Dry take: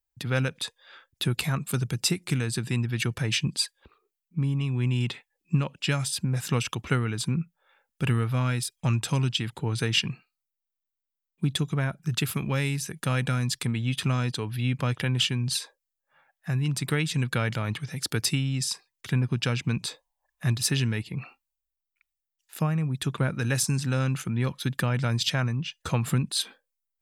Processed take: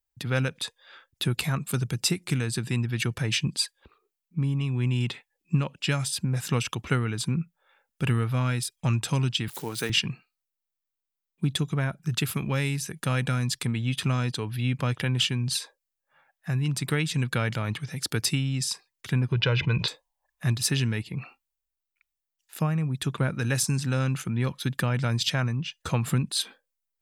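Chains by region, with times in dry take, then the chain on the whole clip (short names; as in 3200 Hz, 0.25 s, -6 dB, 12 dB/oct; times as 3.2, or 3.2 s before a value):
9.48–9.9 switching spikes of -31 dBFS + HPF 230 Hz
19.32–19.88 LPF 3900 Hz 24 dB/oct + comb 2 ms, depth 69% + fast leveller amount 70%
whole clip: dry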